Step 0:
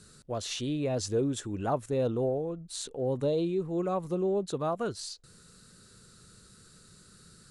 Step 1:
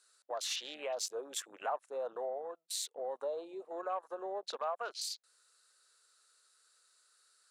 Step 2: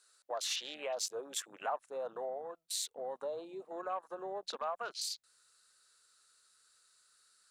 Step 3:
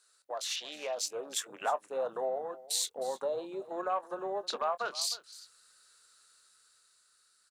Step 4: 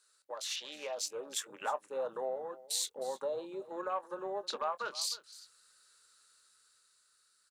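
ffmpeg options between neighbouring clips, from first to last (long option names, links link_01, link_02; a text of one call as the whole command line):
ffmpeg -i in.wav -af "highpass=frequency=650:width=0.5412,highpass=frequency=650:width=1.3066,afwtdn=0.00398,acompressor=threshold=-45dB:ratio=2,volume=5.5dB" out.wav
ffmpeg -i in.wav -af "asubboost=boost=6:cutoff=190,volume=1dB" out.wav
ffmpeg -i in.wav -filter_complex "[0:a]dynaudnorm=framelen=270:gausssize=9:maxgain=5.5dB,asplit=2[link_01][link_02];[link_02]adelay=23,volume=-14dB[link_03];[link_01][link_03]amix=inputs=2:normalize=0,aecho=1:1:311:0.126" out.wav
ffmpeg -i in.wav -af "asuperstop=centerf=700:order=4:qfactor=7.4,volume=-2.5dB" out.wav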